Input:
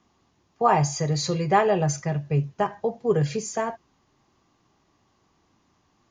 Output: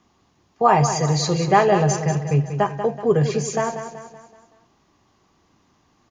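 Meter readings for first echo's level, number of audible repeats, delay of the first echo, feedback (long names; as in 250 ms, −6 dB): −9.5 dB, 4, 189 ms, 47%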